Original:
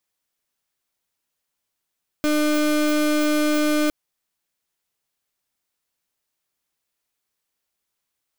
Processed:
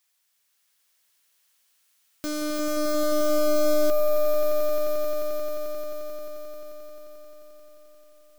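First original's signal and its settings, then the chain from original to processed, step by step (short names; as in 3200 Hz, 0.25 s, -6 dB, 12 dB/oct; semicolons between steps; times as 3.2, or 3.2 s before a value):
pulse 301 Hz, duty 32% -19.5 dBFS 1.66 s
tilt shelf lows -8.5 dB, about 700 Hz; wavefolder -24.5 dBFS; swelling echo 88 ms, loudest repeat 8, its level -7.5 dB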